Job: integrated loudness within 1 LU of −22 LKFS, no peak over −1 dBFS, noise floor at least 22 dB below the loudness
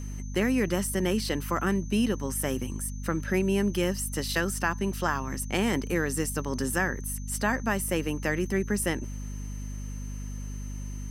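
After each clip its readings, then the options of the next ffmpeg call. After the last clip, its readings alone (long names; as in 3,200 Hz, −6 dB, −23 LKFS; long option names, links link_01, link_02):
mains hum 50 Hz; hum harmonics up to 250 Hz; level of the hum −33 dBFS; interfering tone 6,200 Hz; level of the tone −49 dBFS; integrated loudness −29.0 LKFS; sample peak −11.0 dBFS; target loudness −22.0 LKFS
→ -af "bandreject=frequency=50:width_type=h:width=6,bandreject=frequency=100:width_type=h:width=6,bandreject=frequency=150:width_type=h:width=6,bandreject=frequency=200:width_type=h:width=6,bandreject=frequency=250:width_type=h:width=6"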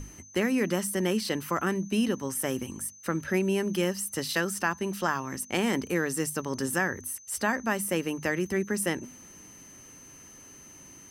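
mains hum none found; interfering tone 6,200 Hz; level of the tone −49 dBFS
→ -af "bandreject=frequency=6200:width=30"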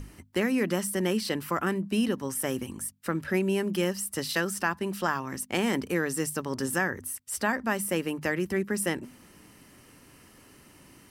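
interfering tone none found; integrated loudness −29.5 LKFS; sample peak −11.5 dBFS; target loudness −22.0 LKFS
→ -af "volume=7.5dB"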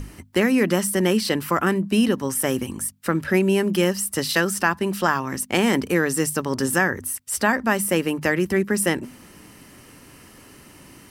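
integrated loudness −22.0 LKFS; sample peak −4.0 dBFS; background noise floor −48 dBFS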